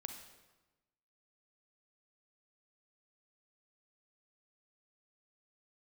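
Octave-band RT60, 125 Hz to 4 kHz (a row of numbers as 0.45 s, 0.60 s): 1.3 s, 1.3 s, 1.1 s, 1.1 s, 1.0 s, 0.90 s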